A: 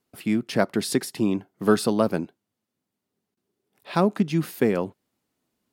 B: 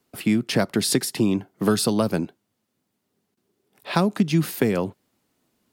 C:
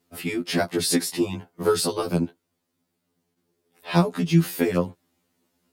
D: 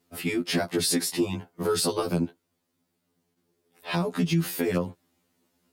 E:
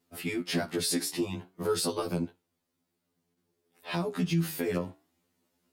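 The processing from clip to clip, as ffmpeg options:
-filter_complex "[0:a]acrossover=split=150|3000[a][b][c];[b]acompressor=threshold=-26dB:ratio=6[d];[a][d][c]amix=inputs=3:normalize=0,volume=7dB"
-af "afftfilt=real='re*2*eq(mod(b,4),0)':imag='im*2*eq(mod(b,4),0)':win_size=2048:overlap=0.75,volume=1.5dB"
-af "alimiter=limit=-15.5dB:level=0:latency=1:release=86"
-af "flanger=delay=7.7:depth=7.1:regen=79:speed=0.52:shape=triangular"

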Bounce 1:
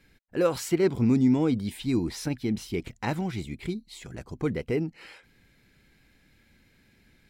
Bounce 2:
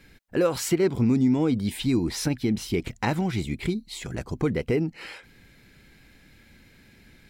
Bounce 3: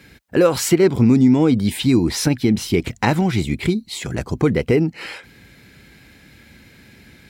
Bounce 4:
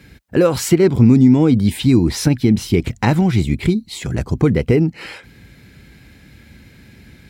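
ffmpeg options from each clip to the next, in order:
-af "acompressor=threshold=-31dB:ratio=2,volume=7.5dB"
-af "highpass=f=51:w=0.5412,highpass=f=51:w=1.3066,volume=8dB"
-af "lowshelf=f=210:g=8.5,volume=-1dB"

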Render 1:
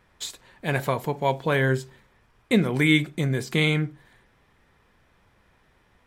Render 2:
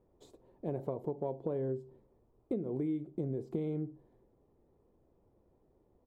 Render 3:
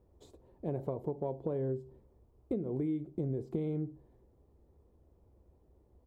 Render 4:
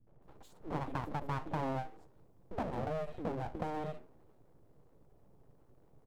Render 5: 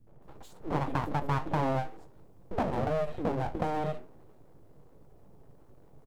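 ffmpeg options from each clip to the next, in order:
-af "firequalizer=gain_entry='entry(190,0);entry(340,9);entry(1600,-24)':delay=0.05:min_phase=1,acompressor=threshold=-24dB:ratio=8,volume=-8dB"
-af "equalizer=f=66:t=o:w=0.94:g=14.5"
-filter_complex "[0:a]acrossover=split=200|1900[a][b][c];[b]adelay=70[d];[c]adelay=220[e];[a][d][e]amix=inputs=3:normalize=0,aeval=exprs='abs(val(0))':c=same,afftfilt=real='re*lt(hypot(re,im),0.141)':imag='im*lt(hypot(re,im),0.141)':win_size=1024:overlap=0.75,volume=3.5dB"
-filter_complex "[0:a]asplit=2[a][b];[b]adelay=21,volume=-12.5dB[c];[a][c]amix=inputs=2:normalize=0,volume=7dB"

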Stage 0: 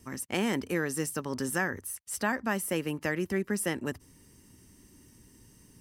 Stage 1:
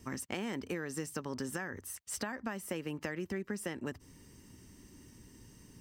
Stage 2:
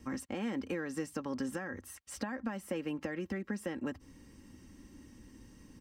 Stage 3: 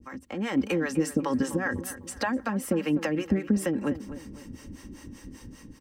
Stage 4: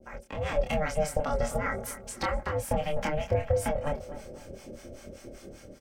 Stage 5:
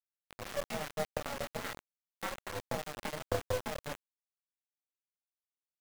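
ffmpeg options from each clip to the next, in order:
-af "equalizer=f=11k:t=o:w=0.45:g=-12.5,alimiter=limit=-19dB:level=0:latency=1:release=347,acompressor=threshold=-36dB:ratio=6,volume=1.5dB"
-filter_complex "[0:a]highshelf=f=5.4k:g=-10.5,aecho=1:1:3.7:0.47,acrossover=split=710[a][b];[b]alimiter=level_in=12.5dB:limit=-24dB:level=0:latency=1:release=13,volume=-12.5dB[c];[a][c]amix=inputs=2:normalize=0,volume=1dB"
-filter_complex "[0:a]dynaudnorm=f=170:g=5:m=11.5dB,acrossover=split=470[a][b];[a]aeval=exprs='val(0)*(1-1/2+1/2*cos(2*PI*5.1*n/s))':c=same[c];[b]aeval=exprs='val(0)*(1-1/2-1/2*cos(2*PI*5.1*n/s))':c=same[d];[c][d]amix=inputs=2:normalize=0,asplit=2[e][f];[f]adelay=251,lowpass=f=2.2k:p=1,volume=-13dB,asplit=2[g][h];[h]adelay=251,lowpass=f=2.2k:p=1,volume=0.41,asplit=2[i][j];[j]adelay=251,lowpass=f=2.2k:p=1,volume=0.41,asplit=2[k][l];[l]adelay=251,lowpass=f=2.2k:p=1,volume=0.41[m];[e][g][i][k][m]amix=inputs=5:normalize=0,volume=4dB"
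-filter_complex "[0:a]aeval=exprs='val(0)*sin(2*PI*300*n/s)':c=same,asplit=2[a][b];[b]adelay=26,volume=-3.5dB[c];[a][c]amix=inputs=2:normalize=0"
-af "highpass=110,lowpass=2.8k,aeval=exprs='0.178*(cos(1*acos(clip(val(0)/0.178,-1,1)))-cos(1*PI/2))+0.0316*(cos(2*acos(clip(val(0)/0.178,-1,1)))-cos(2*PI/2))+0.0398*(cos(3*acos(clip(val(0)/0.178,-1,1)))-cos(3*PI/2))+0.00141*(cos(6*acos(clip(val(0)/0.178,-1,1)))-cos(6*PI/2))':c=same,acrusher=bits=5:mix=0:aa=0.000001,volume=-2.5dB"

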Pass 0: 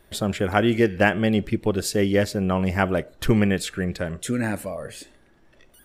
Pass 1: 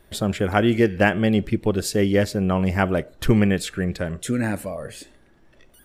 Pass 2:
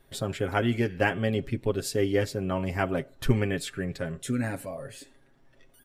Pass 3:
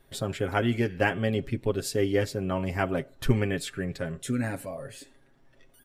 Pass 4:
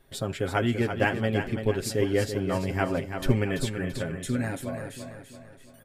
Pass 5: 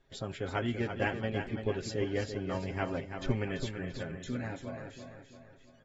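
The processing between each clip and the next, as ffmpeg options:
-af "lowshelf=f=340:g=2.5"
-af "aecho=1:1:7.4:0.65,volume=-7.5dB"
-af anull
-af "aecho=1:1:336|672|1008|1344|1680:0.398|0.183|0.0842|0.0388|0.0178"
-af "volume=-8dB" -ar 48000 -c:a aac -b:a 24k

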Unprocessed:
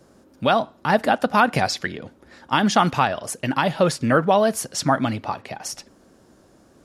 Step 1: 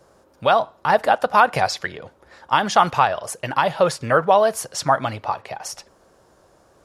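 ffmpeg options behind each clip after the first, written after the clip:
-af "equalizer=f=250:t=o:w=1:g=-11,equalizer=f=500:t=o:w=1:g=4,equalizer=f=1k:t=o:w=1:g=5,volume=-1dB"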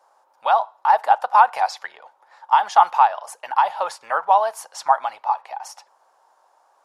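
-af "highpass=f=860:t=q:w=4.9,volume=-8dB"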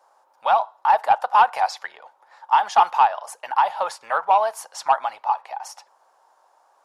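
-af "asoftclip=type=tanh:threshold=-6dB"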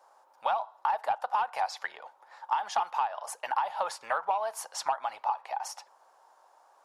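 -af "acompressor=threshold=-24dB:ratio=10,volume=-1.5dB"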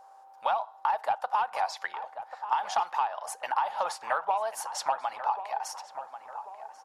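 -filter_complex "[0:a]asplit=2[a][b];[b]adelay=1089,lowpass=f=1.7k:p=1,volume=-10.5dB,asplit=2[c][d];[d]adelay=1089,lowpass=f=1.7k:p=1,volume=0.51,asplit=2[e][f];[f]adelay=1089,lowpass=f=1.7k:p=1,volume=0.51,asplit=2[g][h];[h]adelay=1089,lowpass=f=1.7k:p=1,volume=0.51,asplit=2[i][j];[j]adelay=1089,lowpass=f=1.7k:p=1,volume=0.51,asplit=2[k][l];[l]adelay=1089,lowpass=f=1.7k:p=1,volume=0.51[m];[a][c][e][g][i][k][m]amix=inputs=7:normalize=0,aeval=exprs='val(0)+0.00251*sin(2*PI*780*n/s)':c=same,volume=1dB"

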